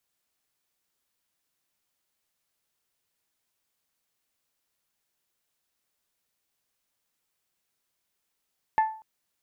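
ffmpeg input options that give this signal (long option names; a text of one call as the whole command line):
ffmpeg -f lavfi -i "aevalsrc='0.158*pow(10,-3*t/0.43)*sin(2*PI*877*t)+0.0422*pow(10,-3*t/0.265)*sin(2*PI*1754*t)+0.0112*pow(10,-3*t/0.233)*sin(2*PI*2104.8*t)+0.00299*pow(10,-3*t/0.199)*sin(2*PI*2631*t)+0.000794*pow(10,-3*t/0.163)*sin(2*PI*3508*t)':duration=0.24:sample_rate=44100" out.wav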